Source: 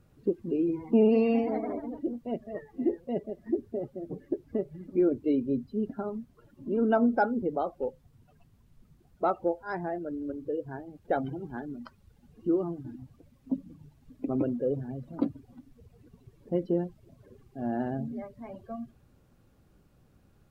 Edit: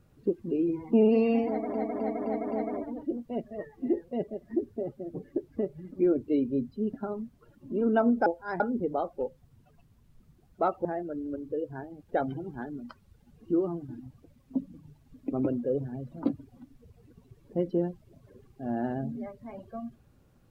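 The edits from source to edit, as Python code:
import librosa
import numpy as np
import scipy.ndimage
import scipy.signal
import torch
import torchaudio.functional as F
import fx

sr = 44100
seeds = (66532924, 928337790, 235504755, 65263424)

y = fx.edit(x, sr, fx.repeat(start_s=1.48, length_s=0.26, count=5),
    fx.move(start_s=9.47, length_s=0.34, to_s=7.22), tone=tone)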